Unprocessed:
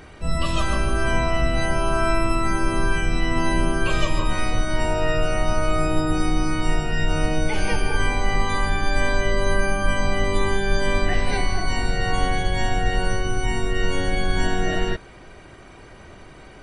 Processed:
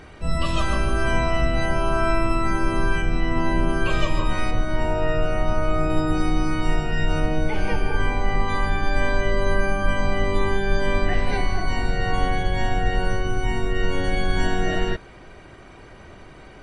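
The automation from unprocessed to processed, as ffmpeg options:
-af "asetnsamples=n=441:p=0,asendcmd='1.45 lowpass f 4000;3.02 lowpass f 2000;3.69 lowpass f 4100;4.51 lowpass f 1800;5.9 lowpass f 3700;7.2 lowpass f 1900;8.48 lowpass f 2900;14.04 lowpass f 5600',lowpass=f=6.9k:p=1"

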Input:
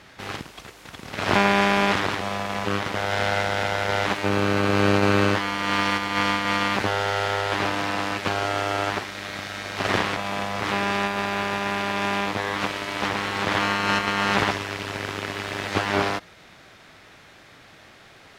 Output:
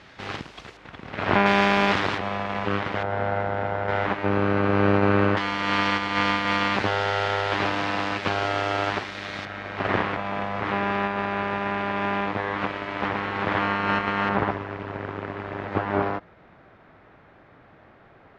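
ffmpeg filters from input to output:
-af "asetnsamples=n=441:p=0,asendcmd='0.77 lowpass f 2500;1.46 lowpass f 5000;2.18 lowpass f 2800;3.03 lowpass f 1200;3.88 lowpass f 1900;5.37 lowpass f 4600;9.45 lowpass f 2100;14.29 lowpass f 1300',lowpass=4.9k"

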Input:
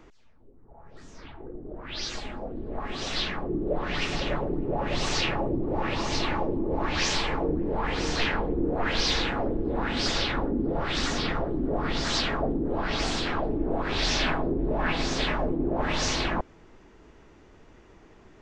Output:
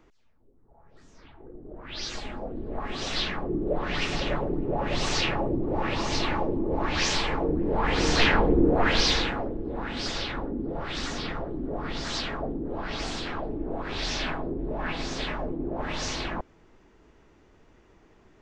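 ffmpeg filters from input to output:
-af "volume=7dB,afade=t=in:st=1.32:d=1.02:silence=0.421697,afade=t=in:st=7.49:d=1.05:silence=0.473151,afade=t=out:st=8.54:d=0.96:silence=0.266073"

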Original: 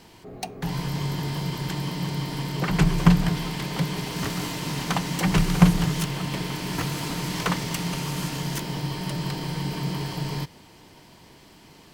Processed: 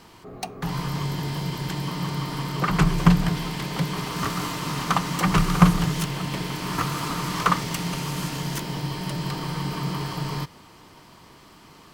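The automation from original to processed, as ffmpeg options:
-af "asetnsamples=n=441:p=0,asendcmd='1.04 equalizer g 3;1.88 equalizer g 10.5;2.89 equalizer g 4;3.93 equalizer g 11.5;5.79 equalizer g 4;6.62 equalizer g 13;7.61 equalizer g 4;9.31 equalizer g 10.5',equalizer=f=1.2k:t=o:w=0.43:g=9.5"

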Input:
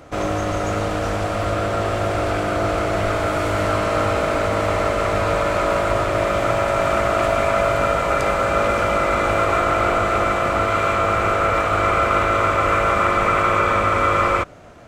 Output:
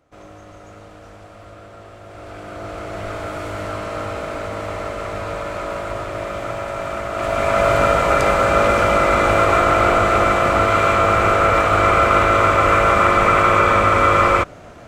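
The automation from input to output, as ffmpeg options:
-af "volume=3.5dB,afade=t=in:st=2.04:d=1.13:silence=0.251189,afade=t=in:st=7.11:d=0.62:silence=0.298538"

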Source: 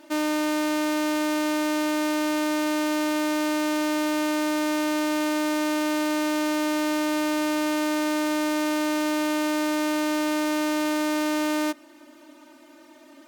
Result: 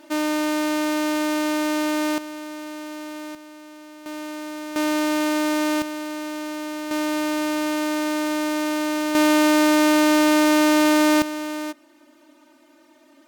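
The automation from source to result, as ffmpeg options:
-af "asetnsamples=n=441:p=0,asendcmd='2.18 volume volume -9.5dB;3.35 volume volume -18dB;4.06 volume volume -8dB;4.76 volume volume 3dB;5.82 volume volume -5.5dB;6.91 volume volume 1dB;9.15 volume volume 8dB;11.22 volume volume -4dB',volume=2dB"

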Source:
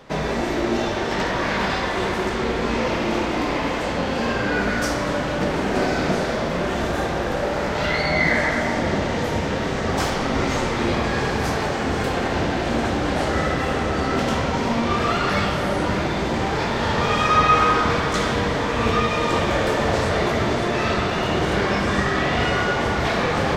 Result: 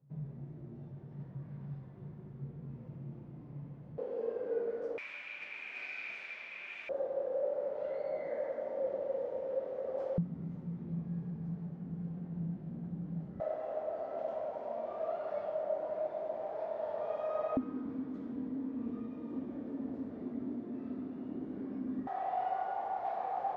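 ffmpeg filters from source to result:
-af "asetnsamples=n=441:p=0,asendcmd='3.98 bandpass f 470;4.98 bandpass f 2400;6.89 bandpass f 540;10.18 bandpass f 170;13.4 bandpass f 630;17.57 bandpass f 260;22.07 bandpass f 760',bandpass=f=140:t=q:w=18:csg=0"

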